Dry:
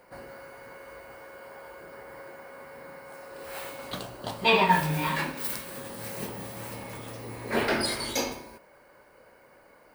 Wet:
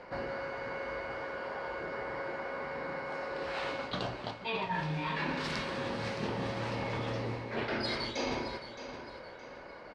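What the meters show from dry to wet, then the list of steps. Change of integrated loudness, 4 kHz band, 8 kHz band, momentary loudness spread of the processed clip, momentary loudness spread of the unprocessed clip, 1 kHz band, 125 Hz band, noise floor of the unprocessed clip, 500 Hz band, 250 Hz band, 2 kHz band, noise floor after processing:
−7.5 dB, −6.0 dB, −15.0 dB, 9 LU, 22 LU, −6.5 dB, −2.5 dB, −57 dBFS, −2.5 dB, −3.5 dB, −4.5 dB, −48 dBFS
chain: low-pass filter 5,000 Hz 24 dB per octave
reversed playback
downward compressor 16 to 1, threshold −39 dBFS, peak gain reduction 23.5 dB
reversed playback
repeating echo 618 ms, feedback 34%, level −11.5 dB
level +7.5 dB

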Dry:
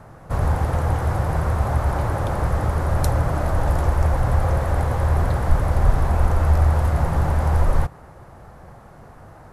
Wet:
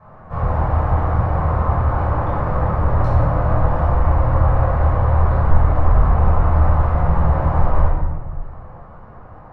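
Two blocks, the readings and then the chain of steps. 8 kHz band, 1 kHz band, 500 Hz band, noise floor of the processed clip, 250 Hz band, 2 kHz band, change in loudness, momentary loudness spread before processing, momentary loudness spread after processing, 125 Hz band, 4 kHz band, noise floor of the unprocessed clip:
below −20 dB, +4.5 dB, +3.0 dB, −40 dBFS, +3.0 dB, 0.0 dB, +3.0 dB, 4 LU, 5 LU, +3.0 dB, can't be measured, −45 dBFS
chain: low-pass filter 2,400 Hz 12 dB per octave
parametric band 1,000 Hz +7.5 dB 0.7 octaves
rectangular room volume 650 cubic metres, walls mixed, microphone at 5.8 metres
level −12.5 dB

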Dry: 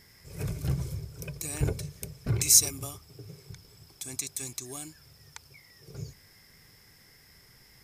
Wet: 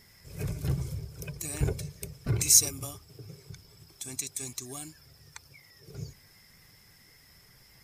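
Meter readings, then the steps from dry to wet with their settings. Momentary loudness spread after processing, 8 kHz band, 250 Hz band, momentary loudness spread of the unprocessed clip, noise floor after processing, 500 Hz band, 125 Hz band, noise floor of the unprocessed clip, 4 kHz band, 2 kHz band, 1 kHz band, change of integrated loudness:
27 LU, −0.5 dB, −0.5 dB, 26 LU, −58 dBFS, 0.0 dB, −0.5 dB, −58 dBFS, −1.0 dB, −1.0 dB, −0.5 dB, −0.5 dB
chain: spectral magnitudes quantised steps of 15 dB

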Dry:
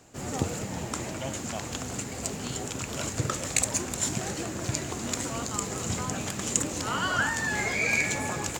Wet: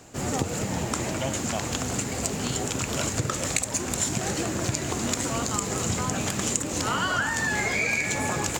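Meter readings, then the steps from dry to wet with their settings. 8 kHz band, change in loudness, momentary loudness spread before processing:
+2.5 dB, +3.0 dB, 8 LU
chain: downward compressor 6 to 1, threshold −29 dBFS, peak gain reduction 10 dB
level +6.5 dB

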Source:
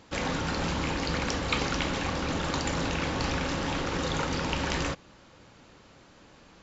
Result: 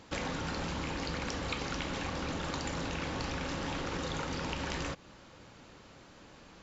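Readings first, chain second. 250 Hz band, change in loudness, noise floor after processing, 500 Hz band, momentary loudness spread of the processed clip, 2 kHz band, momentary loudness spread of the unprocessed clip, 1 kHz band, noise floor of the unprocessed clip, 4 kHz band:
−6.5 dB, −6.5 dB, −56 dBFS, −6.5 dB, 19 LU, −6.5 dB, 2 LU, −6.5 dB, −55 dBFS, −6.5 dB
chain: downward compressor, threshold −33 dBFS, peak gain reduction 10.5 dB

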